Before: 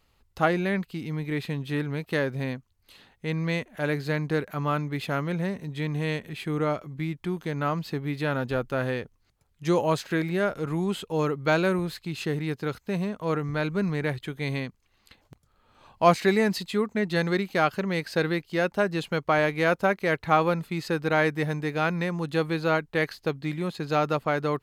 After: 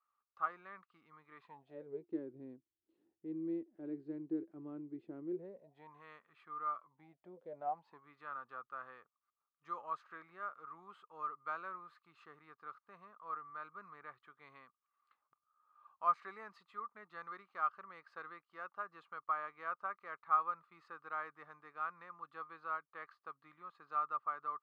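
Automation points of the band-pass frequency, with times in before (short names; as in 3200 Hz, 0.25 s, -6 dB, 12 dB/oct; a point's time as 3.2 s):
band-pass, Q 16
1.37 s 1200 Hz
2.08 s 330 Hz
5.29 s 330 Hz
6.03 s 1200 Hz
6.75 s 1200 Hz
7.4 s 500 Hz
8.08 s 1200 Hz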